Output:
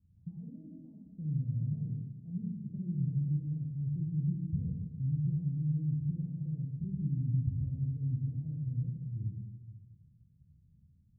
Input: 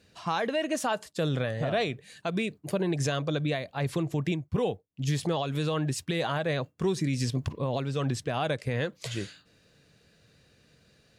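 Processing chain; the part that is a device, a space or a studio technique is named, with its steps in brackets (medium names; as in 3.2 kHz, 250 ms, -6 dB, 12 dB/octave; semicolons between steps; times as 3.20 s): club heard from the street (peak limiter -22 dBFS, peak gain reduction 3.5 dB; low-pass 160 Hz 24 dB/octave; reverberation RT60 1.3 s, pre-delay 22 ms, DRR -1 dB)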